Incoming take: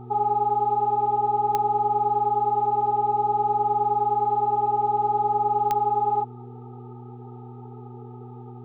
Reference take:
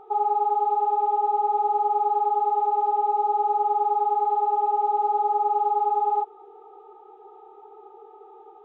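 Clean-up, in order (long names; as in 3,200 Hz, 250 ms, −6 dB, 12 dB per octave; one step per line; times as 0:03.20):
click removal
hum removal 121.6 Hz, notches 3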